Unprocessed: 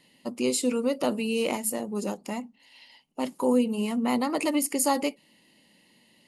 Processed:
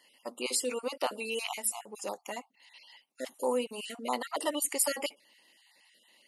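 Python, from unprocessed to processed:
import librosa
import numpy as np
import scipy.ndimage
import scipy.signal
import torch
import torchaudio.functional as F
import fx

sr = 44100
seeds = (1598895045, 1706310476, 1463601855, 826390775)

y = fx.spec_dropout(x, sr, seeds[0], share_pct=29)
y = scipy.signal.sosfilt(scipy.signal.butter(2, 570.0, 'highpass', fs=sr, output='sos'), y)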